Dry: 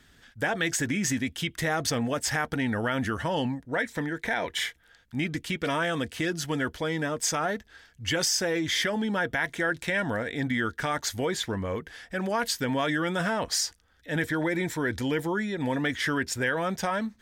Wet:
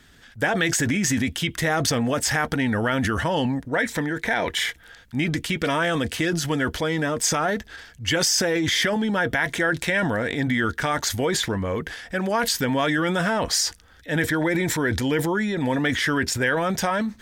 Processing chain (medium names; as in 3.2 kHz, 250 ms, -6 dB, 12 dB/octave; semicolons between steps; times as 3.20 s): transient shaper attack +1 dB, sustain +8 dB; trim +4.5 dB